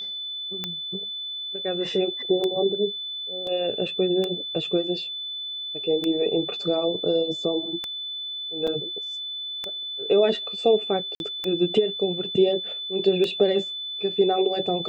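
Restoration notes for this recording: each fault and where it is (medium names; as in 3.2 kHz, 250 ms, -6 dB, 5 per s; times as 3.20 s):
tick 33 1/3 rpm -14 dBFS
whine 3.5 kHz -30 dBFS
3.47 s: dropout 2.4 ms
8.67–8.68 s: dropout 5.5 ms
11.15–11.20 s: dropout 51 ms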